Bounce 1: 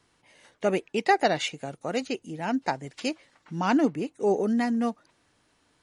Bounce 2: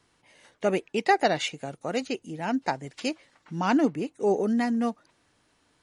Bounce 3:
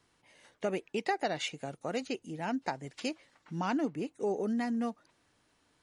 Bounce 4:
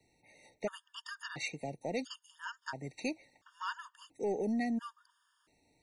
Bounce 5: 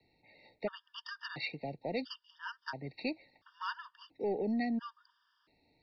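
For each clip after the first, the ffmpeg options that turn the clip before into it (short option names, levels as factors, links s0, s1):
-af anull
-af "acompressor=threshold=0.0501:ratio=2.5,volume=0.631"
-filter_complex "[0:a]acrossover=split=130|1200|1700[s0][s1][s2][s3];[s1]asoftclip=type=tanh:threshold=0.0335[s4];[s0][s4][s2][s3]amix=inputs=4:normalize=0,afftfilt=real='re*gt(sin(2*PI*0.73*pts/sr)*(1-2*mod(floor(b*sr/1024/920),2)),0)':imag='im*gt(sin(2*PI*0.73*pts/sr)*(1-2*mod(floor(b*sr/1024/920),2)),0)':win_size=1024:overlap=0.75,volume=1.12"
-filter_complex "[0:a]acrossover=split=110|640|4300[s0][s1][s2][s3];[s3]crystalizer=i=2:c=0[s4];[s0][s1][s2][s4]amix=inputs=4:normalize=0,aresample=11025,aresample=44100"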